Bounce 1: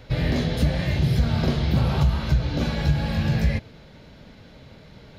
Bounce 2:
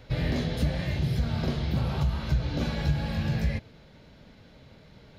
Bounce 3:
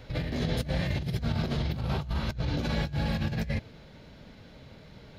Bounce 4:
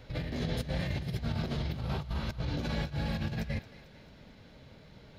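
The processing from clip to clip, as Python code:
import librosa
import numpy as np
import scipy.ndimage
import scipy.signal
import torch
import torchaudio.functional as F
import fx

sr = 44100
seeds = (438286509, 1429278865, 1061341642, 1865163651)

y1 = fx.rider(x, sr, range_db=10, speed_s=0.5)
y1 = y1 * librosa.db_to_amplitude(-5.5)
y2 = fx.over_compress(y1, sr, threshold_db=-29.0, ratio=-0.5)
y3 = fx.echo_thinned(y2, sr, ms=223, feedback_pct=57, hz=420.0, wet_db=-15.5)
y3 = y3 * librosa.db_to_amplitude(-4.0)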